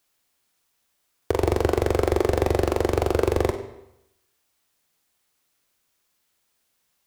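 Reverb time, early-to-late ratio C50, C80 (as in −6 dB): 0.85 s, 9.5 dB, 11.5 dB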